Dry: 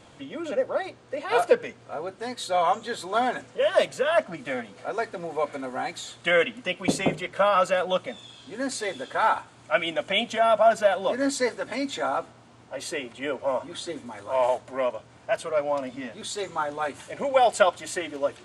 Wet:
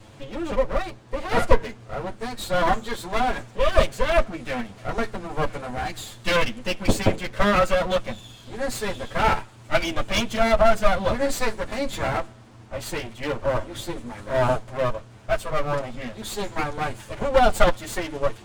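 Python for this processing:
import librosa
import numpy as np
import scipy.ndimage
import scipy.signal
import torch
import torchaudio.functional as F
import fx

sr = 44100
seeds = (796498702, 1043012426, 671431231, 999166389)

y = fx.lower_of_two(x, sr, delay_ms=9.2)
y = fx.low_shelf(y, sr, hz=200.0, db=11.0)
y = y * 10.0 ** (2.0 / 20.0)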